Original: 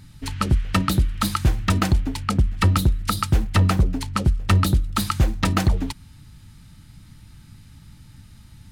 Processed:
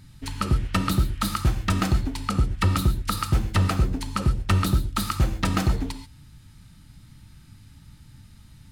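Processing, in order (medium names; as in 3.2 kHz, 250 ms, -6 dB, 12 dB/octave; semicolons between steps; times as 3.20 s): gated-style reverb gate 160 ms flat, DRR 7 dB; trim -3.5 dB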